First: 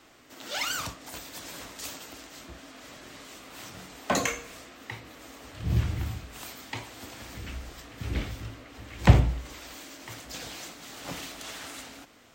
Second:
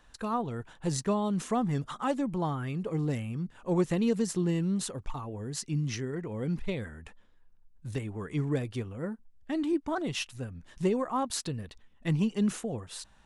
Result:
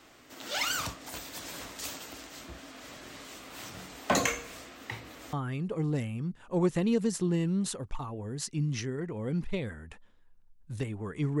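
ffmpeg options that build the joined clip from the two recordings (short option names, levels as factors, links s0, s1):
-filter_complex "[0:a]apad=whole_dur=11.4,atrim=end=11.4,atrim=end=5.332[s0];[1:a]atrim=start=2.478:end=8.55[s1];[s0][s1]acrossfade=d=0.004:c1=hsin:c2=hsin"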